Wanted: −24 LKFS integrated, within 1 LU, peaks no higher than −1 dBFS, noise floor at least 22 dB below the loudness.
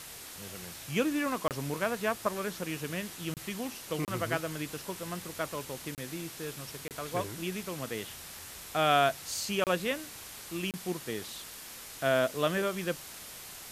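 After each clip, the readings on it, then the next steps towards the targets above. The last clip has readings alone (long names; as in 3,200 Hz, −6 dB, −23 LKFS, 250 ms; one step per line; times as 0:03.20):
number of dropouts 7; longest dropout 28 ms; background noise floor −46 dBFS; target noise floor −56 dBFS; integrated loudness −33.5 LKFS; sample peak −12.5 dBFS; target loudness −24.0 LKFS
→ repair the gap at 0:01.48/0:03.34/0:04.05/0:05.95/0:06.88/0:09.64/0:10.71, 28 ms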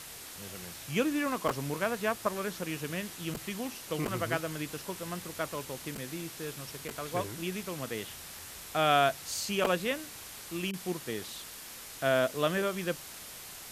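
number of dropouts 0; background noise floor −46 dBFS; target noise floor −56 dBFS
→ broadband denoise 10 dB, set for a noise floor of −46 dBFS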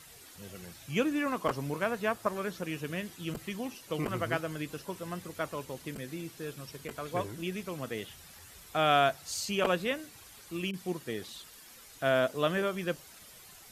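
background noise floor −53 dBFS; target noise floor −56 dBFS
→ broadband denoise 6 dB, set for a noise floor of −53 dBFS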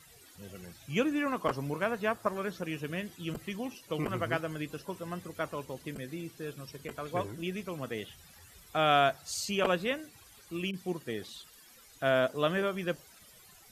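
background noise floor −57 dBFS; integrated loudness −33.5 LKFS; sample peak −13.0 dBFS; target loudness −24.0 LKFS
→ level +9.5 dB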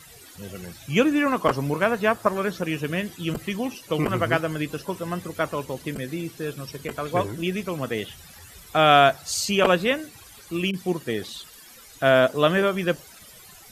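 integrated loudness −24.0 LKFS; sample peak −3.5 dBFS; background noise floor −48 dBFS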